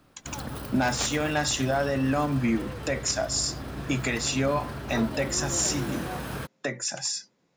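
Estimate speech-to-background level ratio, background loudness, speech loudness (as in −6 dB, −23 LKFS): 8.5 dB, −36.0 LKFS, −27.5 LKFS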